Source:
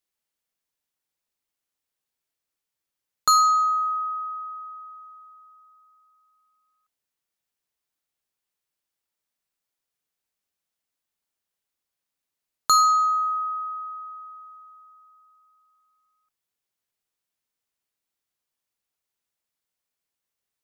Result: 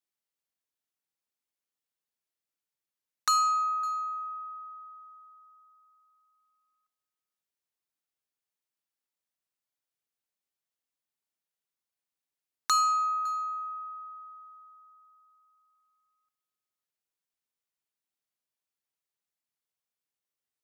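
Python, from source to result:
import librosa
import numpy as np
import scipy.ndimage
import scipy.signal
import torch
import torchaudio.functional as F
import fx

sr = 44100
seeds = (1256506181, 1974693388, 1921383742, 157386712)

y = scipy.signal.sosfilt(scipy.signal.butter(2, 85.0, 'highpass', fs=sr, output='sos'), x)
y = y + 10.0 ** (-23.0 / 20.0) * np.pad(y, (int(558 * sr / 1000.0), 0))[:len(y)]
y = fx.doppler_dist(y, sr, depth_ms=0.24)
y = y * librosa.db_to_amplitude(-7.0)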